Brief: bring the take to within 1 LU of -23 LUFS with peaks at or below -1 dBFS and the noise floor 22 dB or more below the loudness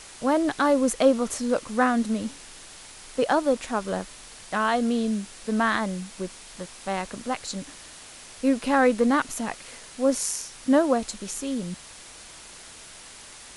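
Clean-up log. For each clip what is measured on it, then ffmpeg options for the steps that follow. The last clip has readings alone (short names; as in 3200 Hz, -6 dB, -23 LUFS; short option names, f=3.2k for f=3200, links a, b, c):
noise floor -45 dBFS; noise floor target -48 dBFS; loudness -25.5 LUFS; peak -7.5 dBFS; loudness target -23.0 LUFS
-> -af "afftdn=nr=6:nf=-45"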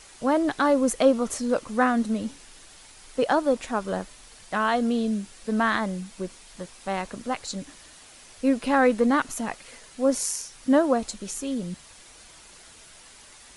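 noise floor -50 dBFS; loudness -25.0 LUFS; peak -8.0 dBFS; loudness target -23.0 LUFS
-> -af "volume=2dB"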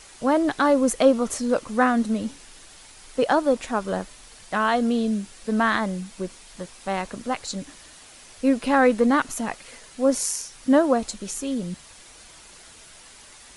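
loudness -23.0 LUFS; peak -6.0 dBFS; noise floor -48 dBFS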